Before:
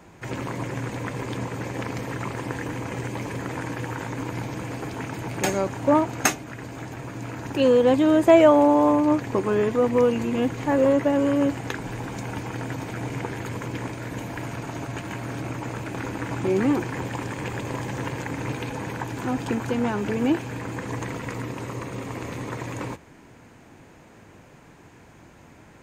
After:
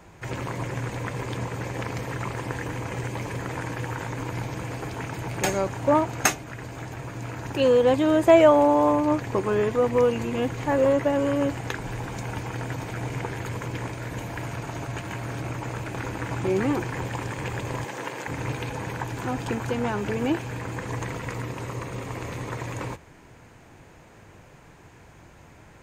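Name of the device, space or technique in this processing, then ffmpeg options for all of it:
low shelf boost with a cut just above: -filter_complex "[0:a]lowshelf=frequency=76:gain=6,equalizer=frequency=250:width_type=o:width=0.85:gain=-5.5,asettb=1/sr,asplit=3[link_01][link_02][link_03];[link_01]atrim=end=17.844[link_04];[link_02]atrim=start=17.84:end=18.28,asetpts=PTS-STARTPTS,afade=type=in:duration=0.004:curve=qsin,afade=type=out:start_time=0.436:duration=0.004:curve=qsin,highpass=290[link_05];[link_03]atrim=start=18.276[link_06];[link_04][link_05]acrossfade=duration=0.004:curve1=hsin:curve2=qsin[link_07];[link_07][link_06]acrossfade=duration=0.004:curve1=qsin:curve2=hsin"

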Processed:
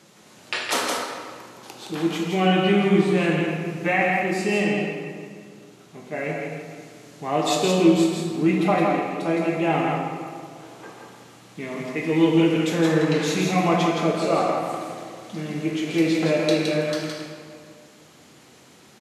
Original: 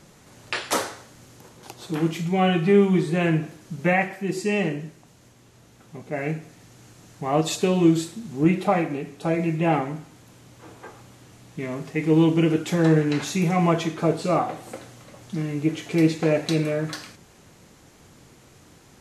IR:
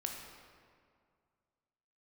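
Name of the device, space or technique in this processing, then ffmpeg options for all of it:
PA in a hall: -filter_complex "[0:a]highpass=180,equalizer=frequency=3400:width_type=o:width=1.3:gain=4,aecho=1:1:166:0.631[link_01];[1:a]atrim=start_sample=2205[link_02];[link_01][link_02]afir=irnorm=-1:irlink=0"

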